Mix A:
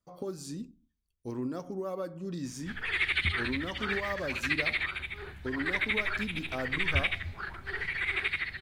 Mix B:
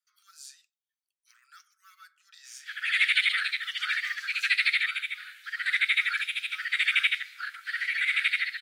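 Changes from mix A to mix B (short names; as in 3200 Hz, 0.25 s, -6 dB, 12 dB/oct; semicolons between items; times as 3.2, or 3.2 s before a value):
background: add high shelf 2200 Hz +10.5 dB; master: add steep high-pass 1300 Hz 96 dB/oct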